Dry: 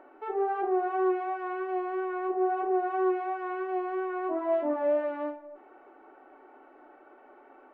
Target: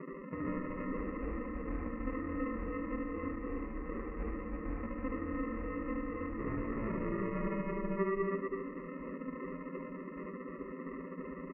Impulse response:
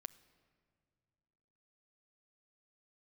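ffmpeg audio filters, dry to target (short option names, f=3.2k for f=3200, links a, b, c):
-filter_complex "[0:a]afftfilt=real='re*gte(hypot(re,im),0.00631)':imag='im*gte(hypot(re,im),0.00631)':win_size=1024:overlap=0.75,aemphasis=mode=production:type=riaa,bandreject=f=50:t=h:w=6,bandreject=f=100:t=h:w=6,bandreject=f=150:t=h:w=6,bandreject=f=200:t=h:w=6,bandreject=f=250:t=h:w=6,bandreject=f=300:t=h:w=6,bandreject=f=350:t=h:w=6,bandreject=f=400:t=h:w=6,bandreject=f=450:t=h:w=6,afftfilt=real='re*lt(hypot(re,im),0.0562)':imag='im*lt(hypot(re,im),0.0562)':win_size=1024:overlap=0.75,equalizer=f=680:t=o:w=1.4:g=7,aecho=1:1:6.5:0.78,acrossover=split=130|980[a][b][c];[b]acontrast=32[d];[a][d][c]amix=inputs=3:normalize=0,acrusher=samples=38:mix=1:aa=0.000001,asplit=2[e][f];[f]aecho=0:1:49.56|218.7:0.794|0.708[g];[e][g]amix=inputs=2:normalize=0,aresample=8000,aresample=44100,asetrate=29591,aresample=44100"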